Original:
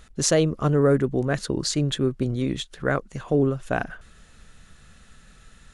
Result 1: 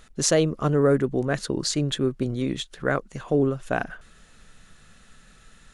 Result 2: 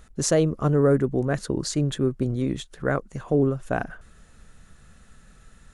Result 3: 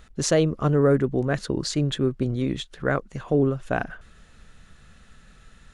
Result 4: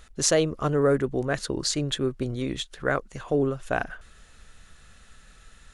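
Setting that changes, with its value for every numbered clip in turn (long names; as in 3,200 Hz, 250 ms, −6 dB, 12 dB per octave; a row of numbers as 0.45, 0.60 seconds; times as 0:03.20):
parametric band, centre frequency: 63, 3,400, 13,000, 170 Hertz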